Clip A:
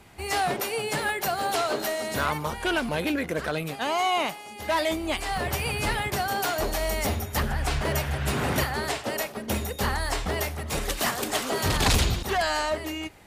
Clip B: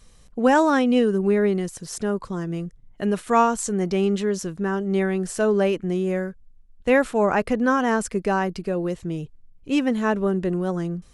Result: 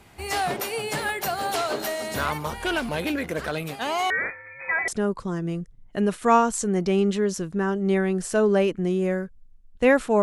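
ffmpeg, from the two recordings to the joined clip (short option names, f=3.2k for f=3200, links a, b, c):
-filter_complex "[0:a]asettb=1/sr,asplit=3[a][b][c];[a]atrim=end=4.104[d];[b]atrim=start=4.1:end=4.88,asetpts=PTS-STARTPTS,afade=t=in:d=0.004:c=qsin,afade=t=out:st=0.776:d=0.004:c=qsin,lowpass=f=2.2k:t=q:w=0.5098,lowpass=f=2.2k:t=q:w=0.6013,lowpass=f=2.2k:t=q:w=0.9,lowpass=f=2.2k:t=q:w=2.563,afreqshift=-2600[e];[c]atrim=start=4.876[f];[d][e]acrossfade=d=0.004:c1=hsin:c2=qsin[g];[g][f]acrossfade=d=0.004:c1=qsin:c2=hsin,apad=whole_dur=10.22,atrim=end=10.22,atrim=end=4.882[h];[1:a]atrim=start=1.928:end=7.27[i];[h][i]acrossfade=d=0.004:c1=hsin:c2=hsin"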